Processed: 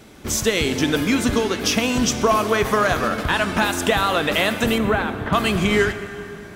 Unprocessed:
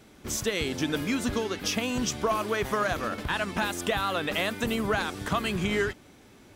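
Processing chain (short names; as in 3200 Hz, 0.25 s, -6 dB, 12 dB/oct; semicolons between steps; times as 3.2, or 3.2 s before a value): 4.78–5.33 air absorption 430 m; plate-style reverb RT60 3.2 s, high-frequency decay 0.65×, DRR 9.5 dB; gain +8.5 dB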